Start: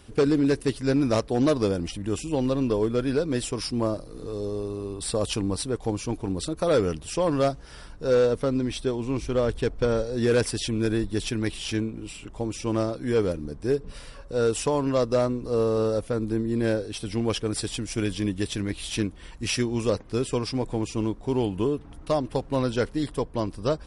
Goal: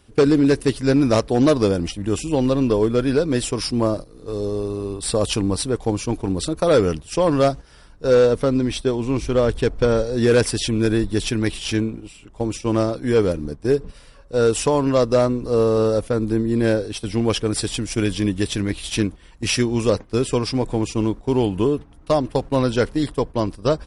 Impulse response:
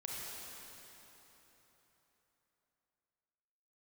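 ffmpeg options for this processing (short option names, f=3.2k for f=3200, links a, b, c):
-af "agate=range=-10dB:threshold=-34dB:ratio=16:detection=peak,volume=6dB"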